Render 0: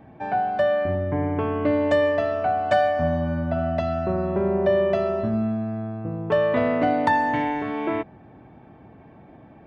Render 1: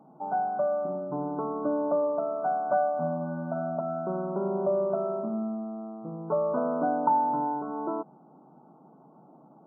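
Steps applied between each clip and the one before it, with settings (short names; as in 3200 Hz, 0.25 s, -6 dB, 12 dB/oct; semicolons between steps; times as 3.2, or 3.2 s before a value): FFT band-pass 130–1500 Hz; bell 900 Hz +5 dB 0.54 oct; gain -7 dB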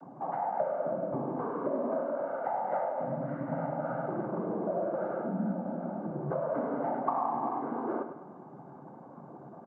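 compressor 3:1, threshold -41 dBFS, peak gain reduction 16 dB; noise vocoder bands 16; feedback echo 0.102 s, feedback 51%, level -10 dB; gain +7 dB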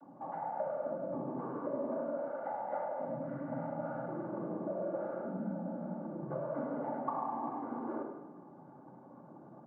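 shoebox room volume 3300 m³, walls furnished, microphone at 2.4 m; gain -8.5 dB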